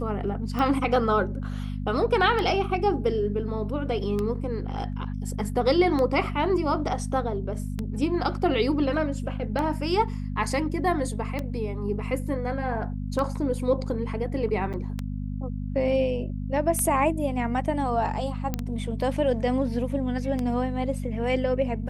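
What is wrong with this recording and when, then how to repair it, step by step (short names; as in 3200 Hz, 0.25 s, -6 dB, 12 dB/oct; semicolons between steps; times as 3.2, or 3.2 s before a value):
hum 50 Hz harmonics 5 -31 dBFS
tick 33 1/3 rpm -16 dBFS
14.73–14.74 gap 7.5 ms
18.54 pop -13 dBFS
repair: de-click; de-hum 50 Hz, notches 5; interpolate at 14.73, 7.5 ms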